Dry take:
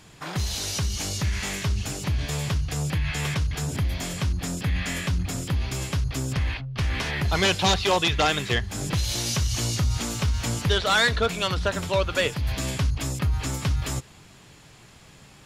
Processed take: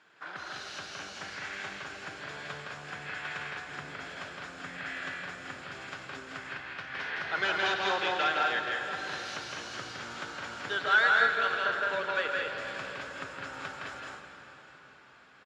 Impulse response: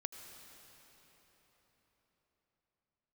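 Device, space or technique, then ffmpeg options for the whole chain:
station announcement: -filter_complex "[0:a]highpass=390,lowpass=3600,equalizer=frequency=1500:width_type=o:width=0.43:gain=12,aecho=1:1:163.3|204.1:0.708|0.631[link_01];[1:a]atrim=start_sample=2205[link_02];[link_01][link_02]afir=irnorm=-1:irlink=0,volume=-8dB"

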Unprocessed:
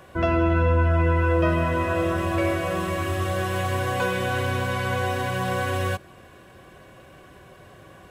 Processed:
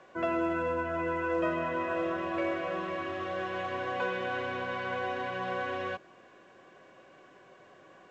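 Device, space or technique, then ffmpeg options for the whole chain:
telephone: -af "highpass=260,lowpass=3100,volume=-6.5dB" -ar 16000 -c:a pcm_alaw

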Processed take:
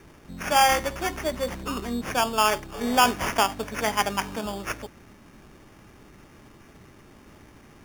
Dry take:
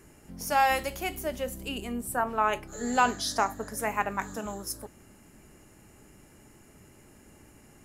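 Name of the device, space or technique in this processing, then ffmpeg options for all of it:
crushed at another speed: -af "asetrate=22050,aresample=44100,acrusher=samples=22:mix=1:aa=0.000001,asetrate=88200,aresample=44100,volume=4.5dB"

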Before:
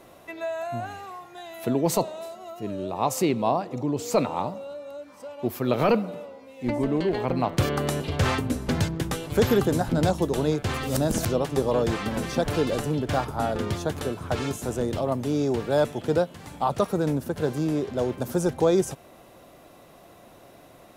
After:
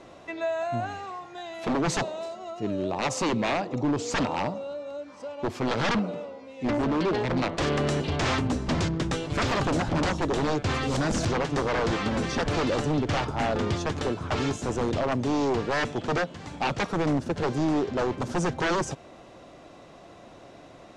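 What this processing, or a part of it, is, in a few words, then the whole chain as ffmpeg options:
synthesiser wavefolder: -af "aeval=exprs='0.0794*(abs(mod(val(0)/0.0794+3,4)-2)-1)':channel_layout=same,lowpass=frequency=7100:width=0.5412,lowpass=frequency=7100:width=1.3066,equalizer=frequency=300:width_type=o:width=0.36:gain=2,volume=2dB"

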